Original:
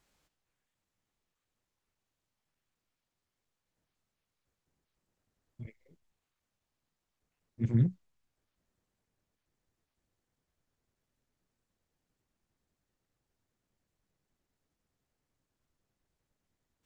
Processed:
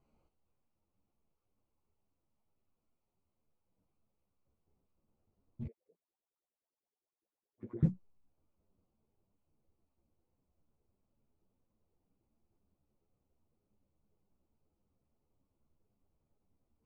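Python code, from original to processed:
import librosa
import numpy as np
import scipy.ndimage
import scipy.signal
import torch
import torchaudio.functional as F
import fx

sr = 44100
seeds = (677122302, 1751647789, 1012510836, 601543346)

y = fx.wiener(x, sr, points=25)
y = fx.filter_lfo_bandpass(y, sr, shape='saw_up', hz=9.7, low_hz=300.0, high_hz=1600.0, q=6.6, at=(5.67, 7.83))
y = fx.ensemble(y, sr)
y = y * 10.0 ** (7.5 / 20.0)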